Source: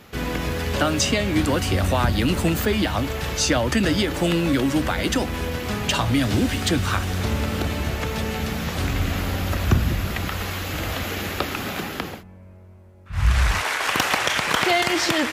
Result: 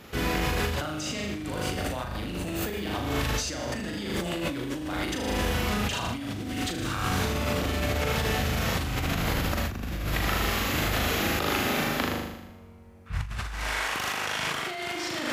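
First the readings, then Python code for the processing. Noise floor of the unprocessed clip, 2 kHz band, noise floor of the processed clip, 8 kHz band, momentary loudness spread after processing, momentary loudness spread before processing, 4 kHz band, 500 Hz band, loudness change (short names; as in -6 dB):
-44 dBFS, -5.0 dB, -44 dBFS, -6.0 dB, 7 LU, 7 LU, -5.5 dB, -6.0 dB, -6.0 dB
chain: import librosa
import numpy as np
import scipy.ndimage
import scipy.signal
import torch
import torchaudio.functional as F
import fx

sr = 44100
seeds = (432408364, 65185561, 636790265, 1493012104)

y = fx.room_flutter(x, sr, wall_m=6.7, rt60_s=0.93)
y = fx.over_compress(y, sr, threshold_db=-24.0, ratio=-1.0)
y = y * 10.0 ** (-5.5 / 20.0)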